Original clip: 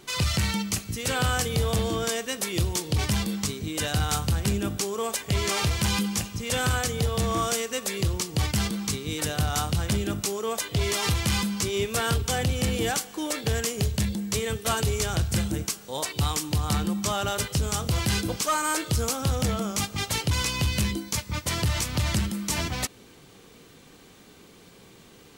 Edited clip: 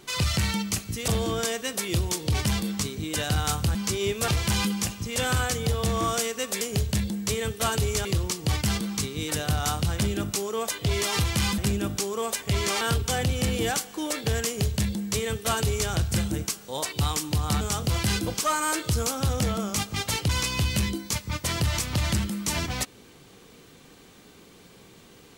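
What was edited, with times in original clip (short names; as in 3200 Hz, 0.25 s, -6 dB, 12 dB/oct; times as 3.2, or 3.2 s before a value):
1.08–1.72 cut
4.39–5.62 swap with 11.48–12.01
13.66–15.1 copy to 7.95
16.81–17.63 cut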